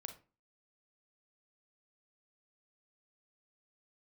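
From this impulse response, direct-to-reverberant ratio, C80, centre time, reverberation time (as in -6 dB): 6.0 dB, 17.0 dB, 11 ms, 0.35 s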